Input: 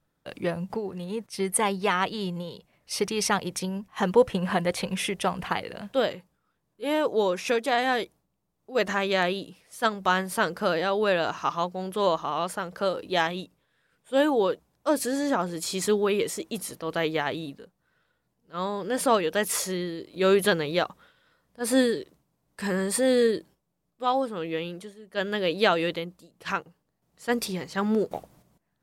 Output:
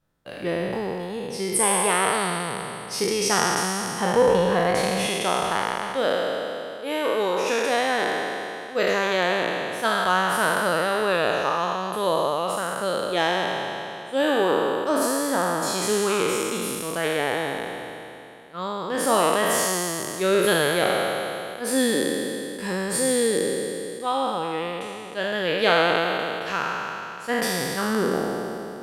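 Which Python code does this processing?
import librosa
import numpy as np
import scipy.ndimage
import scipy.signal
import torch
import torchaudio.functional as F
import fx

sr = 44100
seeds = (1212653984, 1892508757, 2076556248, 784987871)

y = fx.spec_trails(x, sr, decay_s=2.9)
y = fx.low_shelf(y, sr, hz=170.0, db=-7.5, at=(5.06, 7.69))
y = y * librosa.db_to_amplitude(-2.0)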